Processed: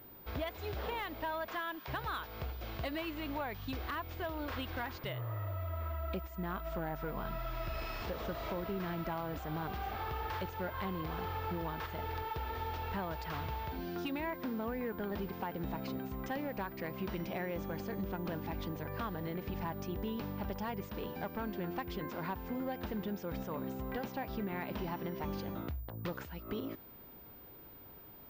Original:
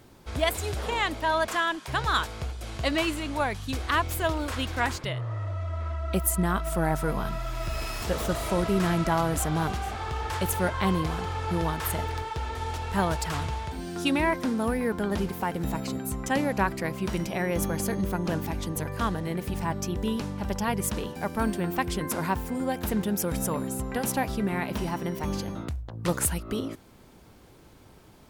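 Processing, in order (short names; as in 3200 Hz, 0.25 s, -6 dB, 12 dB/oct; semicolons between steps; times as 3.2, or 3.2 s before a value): tone controls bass -4 dB, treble +4 dB; compressor 6:1, threshold -31 dBFS, peak gain reduction 13 dB; hard clip -28 dBFS, distortion -19 dB; air absorption 200 m; pulse-width modulation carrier 15000 Hz; gain -2.5 dB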